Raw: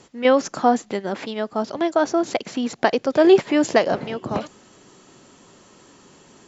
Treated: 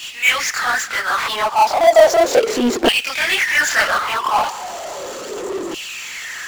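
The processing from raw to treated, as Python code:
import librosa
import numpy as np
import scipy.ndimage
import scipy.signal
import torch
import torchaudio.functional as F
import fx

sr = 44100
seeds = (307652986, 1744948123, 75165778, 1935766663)

y = fx.filter_lfo_highpass(x, sr, shape='saw_down', hz=0.35, low_hz=330.0, high_hz=2900.0, q=7.0)
y = fx.chorus_voices(y, sr, voices=6, hz=1.5, base_ms=26, depth_ms=3.0, mix_pct=65)
y = fx.power_curve(y, sr, exponent=0.5)
y = y * 10.0 ** (-4.0 / 20.0)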